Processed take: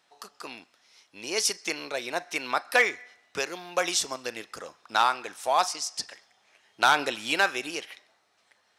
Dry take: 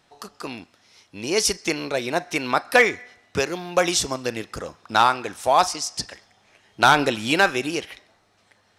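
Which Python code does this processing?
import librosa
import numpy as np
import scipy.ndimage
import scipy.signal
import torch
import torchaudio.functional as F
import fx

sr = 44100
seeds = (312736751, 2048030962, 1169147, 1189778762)

y = fx.highpass(x, sr, hz=670.0, slope=6)
y = y * 10.0 ** (-4.0 / 20.0)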